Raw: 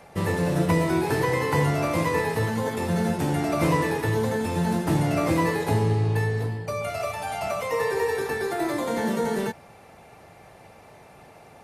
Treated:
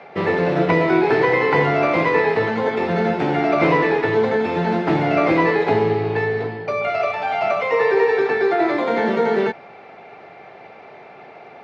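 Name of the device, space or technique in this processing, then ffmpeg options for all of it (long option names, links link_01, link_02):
kitchen radio: -af "highpass=190,equalizer=frequency=400:width_type=q:width=4:gain=7,equalizer=frequency=720:width_type=q:width=4:gain=6,equalizer=frequency=1400:width_type=q:width=4:gain=5,equalizer=frequency=2200:width_type=q:width=4:gain=7,lowpass=frequency=4200:width=0.5412,lowpass=frequency=4200:width=1.3066,volume=4.5dB"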